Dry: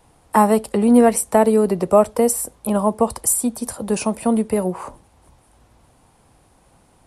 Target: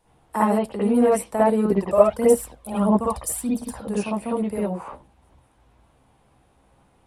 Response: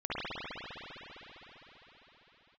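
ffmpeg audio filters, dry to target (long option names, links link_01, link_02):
-filter_complex "[0:a]asettb=1/sr,asplit=3[link_01][link_02][link_03];[link_01]atrim=end=1.654[link_04];[link_02]atrim=start=1.65:end=3.75,asetpts=PTS-STARTPTS,afade=type=in:duration=0.004:curve=qsin,afade=type=out:start_time=2.096:duration=0.004:curve=qsin,aphaser=in_gain=1:out_gain=1:delay=1.9:decay=0.64:speed=1.6:type=triangular[link_05];[link_03]atrim=start=3.746[link_06];[link_04][link_05]acrossfade=duration=0.004:curve1=hsin:curve2=qsin[link_07];[link_07][link_06]acrossfade=duration=0.004:curve1=qsin:curve2=hsin[link_08];[1:a]atrim=start_sample=2205,atrim=end_sample=3969[link_09];[link_08][link_09]afir=irnorm=-1:irlink=0,volume=-6.5dB"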